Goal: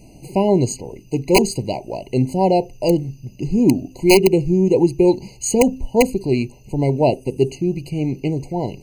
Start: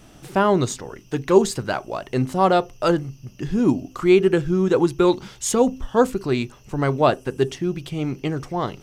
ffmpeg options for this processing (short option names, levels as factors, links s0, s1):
-af "equalizer=f=1400:w=0.99:g=-11.5,aeval=exprs='(mod(2.51*val(0)+1,2)-1)/2.51':c=same,afftfilt=real='re*eq(mod(floor(b*sr/1024/1000),2),0)':imag='im*eq(mod(floor(b*sr/1024/1000),2),0)':win_size=1024:overlap=0.75,volume=1.68"